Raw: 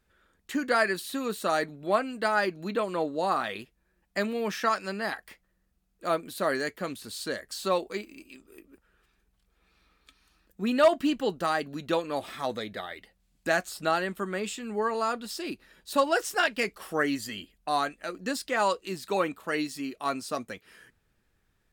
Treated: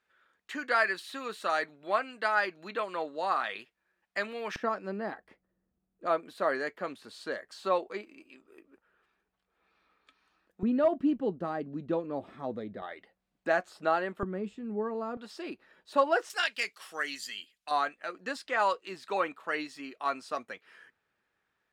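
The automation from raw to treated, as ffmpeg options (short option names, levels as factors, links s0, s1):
-af "asetnsamples=n=441:p=0,asendcmd='4.56 bandpass f 330;6.06 bandpass f 910;10.63 bandpass f 220;12.82 bandpass f 710;14.23 bandpass f 190;15.17 bandpass f 830;16.3 bandpass f 3900;17.71 bandpass f 1300',bandpass=f=1700:t=q:w=0.6:csg=0"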